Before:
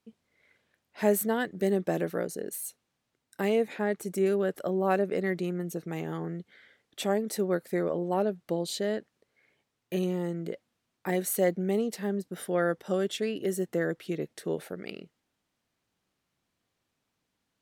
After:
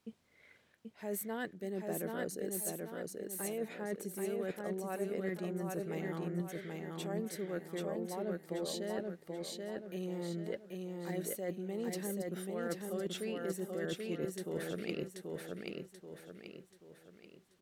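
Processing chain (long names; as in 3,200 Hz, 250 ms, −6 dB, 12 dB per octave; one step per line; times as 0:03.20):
reversed playback
downward compressor 12 to 1, threshold −39 dBFS, peak gain reduction 21 dB
reversed playback
repeating echo 783 ms, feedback 42%, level −3 dB
level +3 dB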